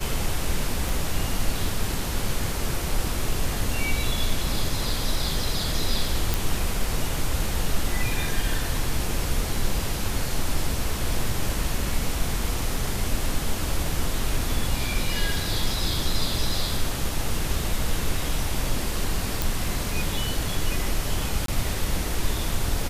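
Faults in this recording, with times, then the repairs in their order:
0.89 pop
6.34 pop
19.42 pop
21.46–21.48 gap 23 ms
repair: de-click; interpolate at 21.46, 23 ms

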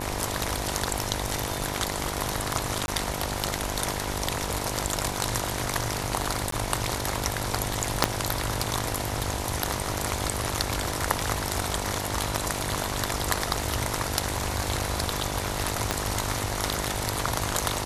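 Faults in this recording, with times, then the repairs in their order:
buzz 50 Hz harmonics 20 -34 dBFS
2.86–2.88 gap 21 ms
6.51–6.52 gap 13 ms
8.04 pop -2 dBFS
15.91 pop -8 dBFS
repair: de-click; de-hum 50 Hz, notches 20; interpolate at 2.86, 21 ms; interpolate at 6.51, 13 ms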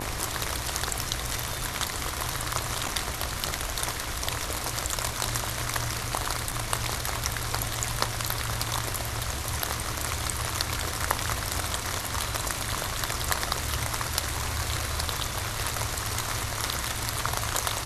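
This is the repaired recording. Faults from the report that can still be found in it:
8.04 pop
15.91 pop

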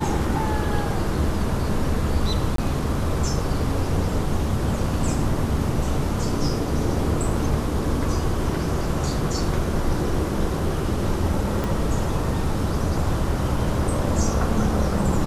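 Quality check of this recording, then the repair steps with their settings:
2.56–2.58 gap 23 ms
11.64 pop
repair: de-click; interpolate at 2.56, 23 ms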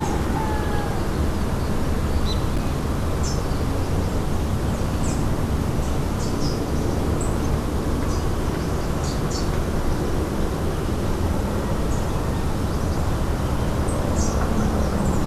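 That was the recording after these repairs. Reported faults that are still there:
none

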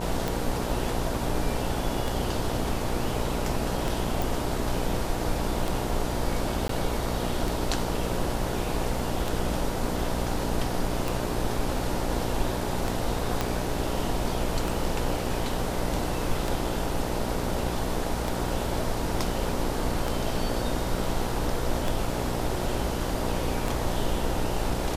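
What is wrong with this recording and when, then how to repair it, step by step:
buzz 60 Hz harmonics 16 -32 dBFS
tick 33 1/3 rpm
4.22 pop
6.68–6.69 gap 13 ms
13.41 pop -10 dBFS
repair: de-click; de-hum 60 Hz, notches 16; interpolate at 6.68, 13 ms

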